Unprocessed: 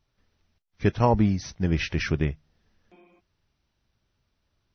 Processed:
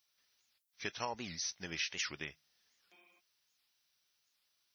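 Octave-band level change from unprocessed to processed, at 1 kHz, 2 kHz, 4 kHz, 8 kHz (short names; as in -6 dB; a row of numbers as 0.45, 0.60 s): -15.5 dB, -8.0 dB, -2.0 dB, n/a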